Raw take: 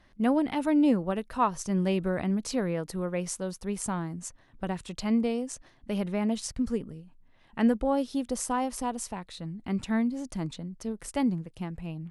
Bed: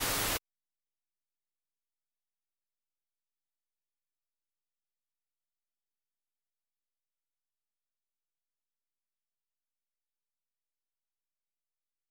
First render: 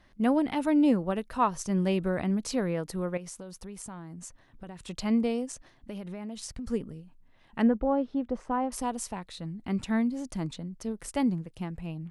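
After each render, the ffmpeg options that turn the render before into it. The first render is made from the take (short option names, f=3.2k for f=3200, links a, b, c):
-filter_complex "[0:a]asettb=1/sr,asplit=3[a][b][c];[a]atrim=end=3.174[d];[b]atrim=start=3.17:end=4.84,asetpts=PTS-STARTPTS,afade=t=in:d=0.004:c=qsin,afade=t=out:st=1.666:d=0.004:c=qsin,acompressor=threshold=-39dB:ratio=5:attack=3.2:release=140:knee=1:detection=peak[e];[c]atrim=start=4.836[f];[d][e]acrossfade=d=0.004:c1=hsin:c2=qsin[g];[g][f]acrossfade=d=0.004:c1=qsin:c2=hsin,asplit=3[h][i][j];[h]afade=t=out:st=5.45:d=0.02[k];[i]acompressor=threshold=-35dB:ratio=6:attack=3.2:release=140:knee=1:detection=peak,afade=t=in:st=5.45:d=0.02,afade=t=out:st=6.66:d=0.02[l];[j]afade=t=in:st=6.66:d=0.02[m];[k][l][m]amix=inputs=3:normalize=0,asettb=1/sr,asplit=3[n][o][p];[n]atrim=end=7.624[q];[o]atrim=start=7.62:end=8.72,asetpts=PTS-STARTPTS,afade=t=in:d=0.004:c=qsin,afade=t=out:st=1.096:d=0.004:c=qsin,lowpass=1.6k[r];[p]atrim=start=8.716[s];[q][r]acrossfade=d=0.004:c1=hsin:c2=qsin[t];[t][s]acrossfade=d=0.004:c1=qsin:c2=hsin"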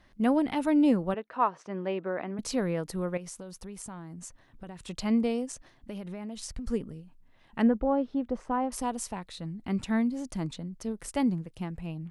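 -filter_complex "[0:a]asettb=1/sr,asplit=3[a][b][c];[a]atrim=end=1.144[d];[b]atrim=start=1.14:end=2.39,asetpts=PTS-STARTPTS,afade=t=in:d=0.004:c=qsin,afade=t=out:st=1.246:d=0.004:c=qsin,highpass=350,lowpass=2.2k[e];[c]atrim=start=2.386[f];[d][e]acrossfade=d=0.004:c1=hsin:c2=qsin[g];[g][f]acrossfade=d=0.004:c1=qsin:c2=hsin,asettb=1/sr,asplit=3[h][i][j];[h]atrim=end=6.164[k];[i]atrim=start=6.16:end=6.71,asetpts=PTS-STARTPTS,afade=t=in:d=0.004:c=qsin,afade=t=out:st=0.546:d=0.004:c=qsin,asubboost=boost=9:cutoff=76[l];[j]atrim=start=6.706[m];[k][l]acrossfade=d=0.004:c1=hsin:c2=qsin[n];[n][m]acrossfade=d=0.004:c1=qsin:c2=hsin"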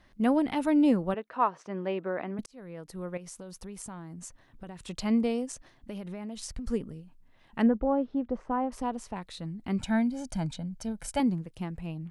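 -filter_complex "[0:a]asettb=1/sr,asplit=3[a][b][c];[a]atrim=end=7.664[d];[b]atrim=start=7.66:end=9.16,asetpts=PTS-STARTPTS,afade=t=in:d=0.004:c=qsin,afade=t=out:st=1.496:d=0.004:c=qsin,aemphasis=mode=reproduction:type=75kf[e];[c]atrim=start=9.156[f];[d][e]acrossfade=d=0.004:c1=hsin:c2=qsin[g];[g][f]acrossfade=d=0.004:c1=qsin:c2=hsin,asettb=1/sr,asplit=3[h][i][j];[h]atrim=end=9.804[k];[i]atrim=start=9.8:end=11.2,asetpts=PTS-STARTPTS,afade=t=in:d=0.004:c=qsin,afade=t=out:st=1.396:d=0.004:c=qsin,aecho=1:1:1.3:0.69,atrim=end_sample=61740[l];[j]atrim=start=11.196[m];[k][l]acrossfade=d=0.004:c1=hsin:c2=qsin[n];[n][m]acrossfade=d=0.004:c1=qsin:c2=hsin,asplit=2[o][p];[o]atrim=end=2.46,asetpts=PTS-STARTPTS,afade=t=out:st=2.456:d=0.004:c=hsin[q];[p]atrim=start=2.46,asetpts=PTS-STARTPTS,afade=t=in:d=1.1[r];[q][r]concat=n=2:v=0:a=1"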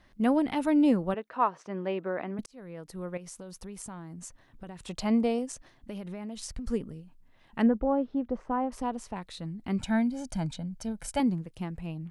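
-filter_complex "[0:a]asettb=1/sr,asplit=3[a][b][c];[a]atrim=end=4.804[d];[b]atrim=start=4.8:end=5.39,asetpts=PTS-STARTPTS,afade=t=in:d=0.004:c=qsin,afade=t=out:st=0.586:d=0.004:c=qsin,equalizer=f=730:w=1.6:g=5.5[e];[c]atrim=start=5.386[f];[d][e]acrossfade=d=0.004:c1=hsin:c2=qsin[g];[g][f]acrossfade=d=0.004:c1=qsin:c2=hsin"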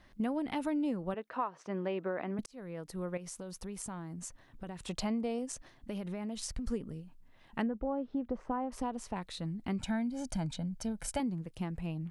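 -af "acompressor=threshold=-31dB:ratio=6"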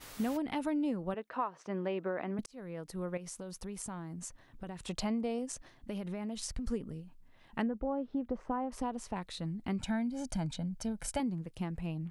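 -filter_complex "[1:a]volume=-18.5dB[a];[0:a][a]amix=inputs=2:normalize=0"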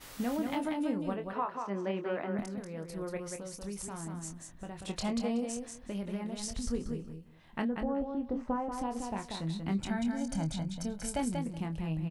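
-filter_complex "[0:a]asplit=2[a][b];[b]adelay=25,volume=-7.5dB[c];[a][c]amix=inputs=2:normalize=0,aecho=1:1:187|374|561:0.562|0.101|0.0182"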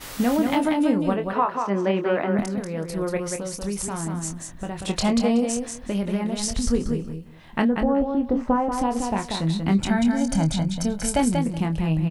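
-af "volume=12dB"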